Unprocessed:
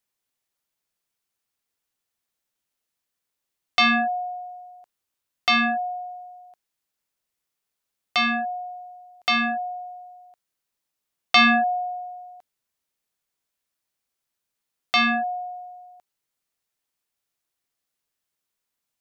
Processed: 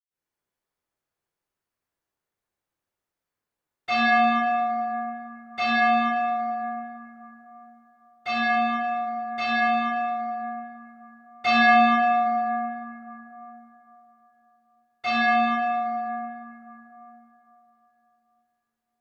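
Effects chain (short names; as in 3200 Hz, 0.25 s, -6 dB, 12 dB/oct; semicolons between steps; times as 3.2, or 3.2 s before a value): high shelf 2500 Hz -9 dB; reverb RT60 3.6 s, pre-delay 98 ms, DRR -60 dB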